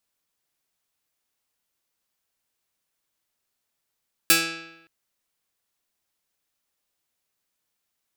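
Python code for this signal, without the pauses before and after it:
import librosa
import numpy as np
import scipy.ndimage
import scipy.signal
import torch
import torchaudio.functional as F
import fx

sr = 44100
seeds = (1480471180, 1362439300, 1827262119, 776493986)

y = fx.pluck(sr, length_s=0.57, note=52, decay_s=0.93, pick=0.16, brightness='medium')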